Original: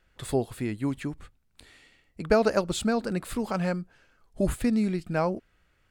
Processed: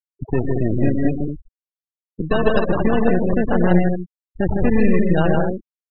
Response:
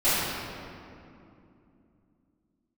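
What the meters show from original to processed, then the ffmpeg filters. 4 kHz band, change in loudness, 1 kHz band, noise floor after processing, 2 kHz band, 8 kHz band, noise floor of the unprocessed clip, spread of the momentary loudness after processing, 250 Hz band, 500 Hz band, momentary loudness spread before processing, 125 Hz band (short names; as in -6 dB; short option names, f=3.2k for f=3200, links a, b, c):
+1.0 dB, +8.5 dB, +7.5 dB, under -85 dBFS, +8.5 dB, under -40 dB, -68 dBFS, 12 LU, +10.0 dB, +8.0 dB, 13 LU, +12.0 dB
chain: -af "acrusher=samples=20:mix=1:aa=0.000001,acompressor=threshold=-26dB:ratio=4,aeval=exprs='0.141*(cos(1*acos(clip(val(0)/0.141,-1,1)))-cos(1*PI/2))+0.0316*(cos(4*acos(clip(val(0)/0.141,-1,1)))-cos(4*PI/2))+0.0282*(cos(5*acos(clip(val(0)/0.141,-1,1)))-cos(5*PI/2))+0.0158*(cos(7*acos(clip(val(0)/0.141,-1,1)))-cos(7*PI/2))+0.0178*(cos(8*acos(clip(val(0)/0.141,-1,1)))-cos(8*PI/2))':c=same,aecho=1:1:106|117|157|228:0.299|0.335|0.708|0.531,afftfilt=real='re*gte(hypot(re,im),0.0708)':imag='im*gte(hypot(re,im),0.0708)':win_size=1024:overlap=0.75,volume=7dB"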